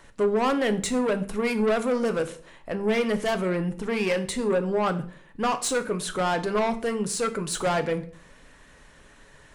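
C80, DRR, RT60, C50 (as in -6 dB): 19.0 dB, 8.5 dB, 0.50 s, 15.0 dB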